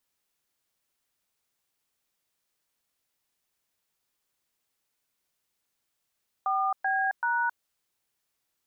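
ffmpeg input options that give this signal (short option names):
-f lavfi -i "aevalsrc='0.0473*clip(min(mod(t,0.384),0.268-mod(t,0.384))/0.002,0,1)*(eq(floor(t/0.384),0)*(sin(2*PI*770*mod(t,0.384))+sin(2*PI*1209*mod(t,0.384)))+eq(floor(t/0.384),1)*(sin(2*PI*770*mod(t,0.384))+sin(2*PI*1633*mod(t,0.384)))+eq(floor(t/0.384),2)*(sin(2*PI*941*mod(t,0.384))+sin(2*PI*1477*mod(t,0.384))))':d=1.152:s=44100"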